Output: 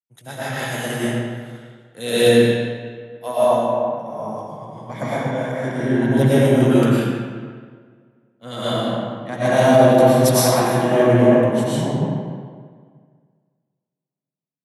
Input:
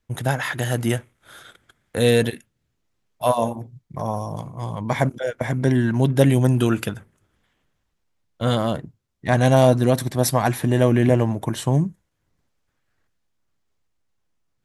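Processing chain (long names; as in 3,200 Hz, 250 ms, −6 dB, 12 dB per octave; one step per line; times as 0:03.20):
high-pass filter 140 Hz 24 dB per octave
comb and all-pass reverb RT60 3 s, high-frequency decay 0.65×, pre-delay 70 ms, DRR −9.5 dB
boost into a limiter −2 dB
multiband upward and downward expander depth 70%
level −4 dB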